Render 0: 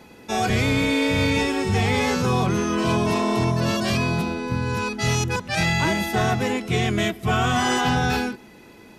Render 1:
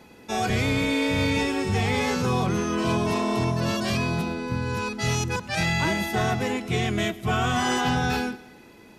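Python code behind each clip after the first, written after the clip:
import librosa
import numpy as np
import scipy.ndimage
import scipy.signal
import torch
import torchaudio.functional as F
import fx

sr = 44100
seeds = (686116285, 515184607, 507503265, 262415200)

y = fx.echo_feedback(x, sr, ms=108, feedback_pct=54, wet_db=-21)
y = y * 10.0 ** (-3.0 / 20.0)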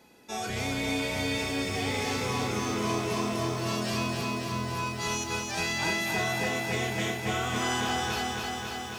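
y = fx.bass_treble(x, sr, bass_db=-5, treble_db=5)
y = fx.doubler(y, sr, ms=33.0, db=-7.5)
y = fx.echo_crushed(y, sr, ms=273, feedback_pct=80, bits=8, wet_db=-4)
y = y * 10.0 ** (-8.0 / 20.0)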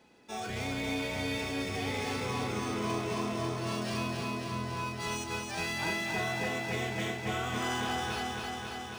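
y = np.interp(np.arange(len(x)), np.arange(len(x))[::3], x[::3])
y = y * 10.0 ** (-3.5 / 20.0)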